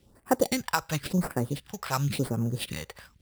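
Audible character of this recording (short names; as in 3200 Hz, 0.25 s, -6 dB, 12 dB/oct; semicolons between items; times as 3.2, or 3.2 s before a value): aliases and images of a low sample rate 6500 Hz, jitter 0%; phasing stages 2, 0.94 Hz, lowest notch 240–3600 Hz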